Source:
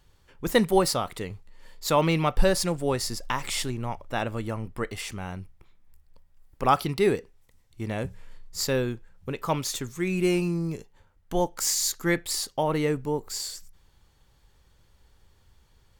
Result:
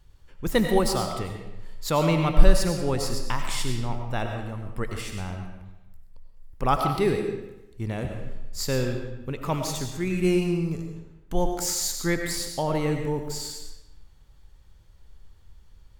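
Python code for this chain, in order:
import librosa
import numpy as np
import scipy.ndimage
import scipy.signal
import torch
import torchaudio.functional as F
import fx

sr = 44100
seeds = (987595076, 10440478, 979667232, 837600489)

y = fx.low_shelf(x, sr, hz=130.0, db=10.5)
y = fx.level_steps(y, sr, step_db=11, at=(4.26, 4.66))
y = fx.rev_freeverb(y, sr, rt60_s=0.95, hf_ratio=0.85, predelay_ms=55, drr_db=4.0)
y = y * librosa.db_to_amplitude(-2.5)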